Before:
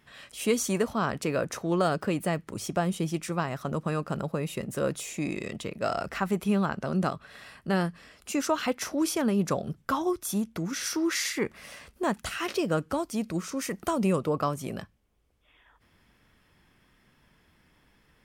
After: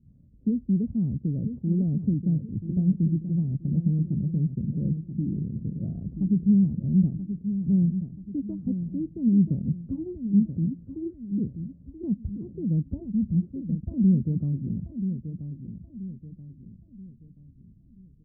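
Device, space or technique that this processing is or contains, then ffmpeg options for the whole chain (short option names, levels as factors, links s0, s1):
the neighbour's flat through the wall: -filter_complex "[0:a]lowpass=f=220:w=0.5412,lowpass=f=220:w=1.3066,equalizer=f=83:t=o:w=0.77:g=3.5,asettb=1/sr,asplit=3[s0][s1][s2];[s0]atrim=end=12.934[s3];[s1]atrim=start=12.93:end=13.94,asetpts=PTS-STARTPTS,afade=t=in:d=0.004:c=qsin,afade=t=out:st=1.006:d=0.004:c=qsin,aecho=1:1:1.4:0.81,atrim=end_sample=44541[s4];[s2]atrim=start=13.936[s5];[s3][s4]acrossfade=d=0.004:c1=hsin:c2=qsin[s6];[s6][s5]acrossfade=d=0.004:c1=qsin:c2=hsin,asplit=2[s7][s8];[s8]adelay=981,lowpass=f=1300:p=1,volume=0.355,asplit=2[s9][s10];[s10]adelay=981,lowpass=f=1300:p=1,volume=0.4,asplit=2[s11][s12];[s12]adelay=981,lowpass=f=1300:p=1,volume=0.4,asplit=2[s13][s14];[s14]adelay=981,lowpass=f=1300:p=1,volume=0.4[s15];[s7][s9][s11][s13][s15]amix=inputs=5:normalize=0,volume=2.66"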